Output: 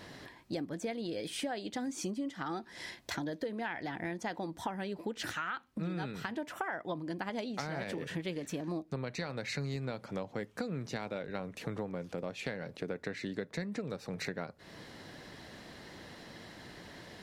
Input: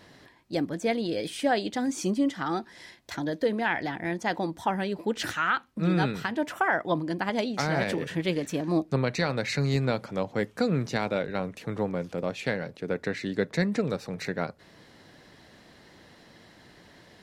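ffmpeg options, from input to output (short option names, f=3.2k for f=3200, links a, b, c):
-af "acompressor=threshold=-39dB:ratio=6,volume=3.5dB"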